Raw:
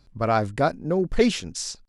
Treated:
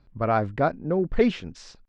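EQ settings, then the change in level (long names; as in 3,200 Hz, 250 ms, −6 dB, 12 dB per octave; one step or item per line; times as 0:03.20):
low-pass filter 2,500 Hz 12 dB per octave
−1.0 dB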